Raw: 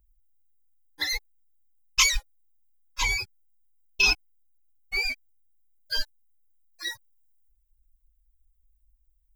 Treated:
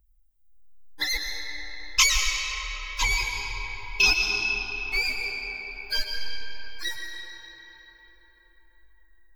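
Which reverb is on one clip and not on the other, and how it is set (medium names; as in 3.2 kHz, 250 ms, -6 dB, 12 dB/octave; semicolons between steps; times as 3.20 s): algorithmic reverb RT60 4.9 s, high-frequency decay 0.6×, pre-delay 80 ms, DRR 1 dB; trim +1 dB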